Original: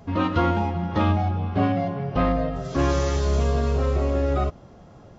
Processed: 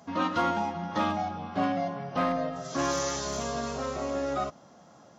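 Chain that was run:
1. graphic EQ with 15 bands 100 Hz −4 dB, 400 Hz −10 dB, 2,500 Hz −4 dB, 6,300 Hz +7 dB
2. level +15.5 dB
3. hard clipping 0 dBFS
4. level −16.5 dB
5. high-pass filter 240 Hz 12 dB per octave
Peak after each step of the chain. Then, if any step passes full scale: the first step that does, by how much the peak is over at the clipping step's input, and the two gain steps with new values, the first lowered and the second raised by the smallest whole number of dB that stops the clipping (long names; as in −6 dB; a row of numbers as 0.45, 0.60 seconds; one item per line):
−11.0, +4.5, 0.0, −16.5, −14.5 dBFS
step 2, 4.5 dB
step 2 +10.5 dB, step 4 −11.5 dB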